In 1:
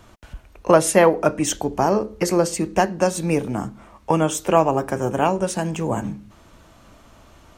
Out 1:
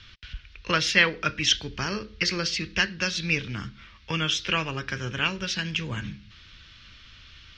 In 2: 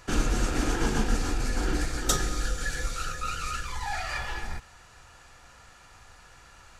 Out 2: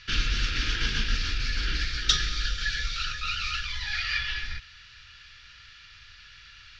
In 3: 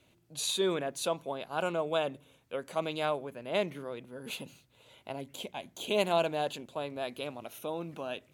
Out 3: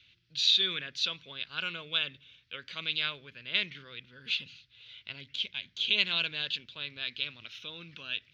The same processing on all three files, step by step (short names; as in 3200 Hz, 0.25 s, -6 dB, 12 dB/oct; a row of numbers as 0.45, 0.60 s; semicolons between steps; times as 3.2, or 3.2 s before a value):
EQ curve 100 Hz 0 dB, 300 Hz -13 dB, 470 Hz -13 dB, 750 Hz -24 dB, 1500 Hz +3 dB, 3400 Hz +13 dB, 5400 Hz +7 dB, 8800 Hz -28 dB; gain -1 dB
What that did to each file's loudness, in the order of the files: -5.5, +2.0, +3.5 LU